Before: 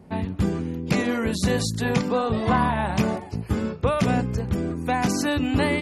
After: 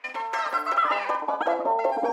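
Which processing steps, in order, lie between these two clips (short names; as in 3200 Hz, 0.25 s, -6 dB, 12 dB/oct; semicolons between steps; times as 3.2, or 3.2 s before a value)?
HPF 170 Hz 12 dB/oct; wide varispeed 2.73×; small resonant body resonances 280/910 Hz, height 12 dB, ringing for 30 ms; in parallel at -7.5 dB: short-mantissa float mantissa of 2-bit; on the sum: band-pass sweep 2300 Hz -> 480 Hz, 0.05–2.01; on a send: flutter echo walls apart 8.7 m, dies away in 0.38 s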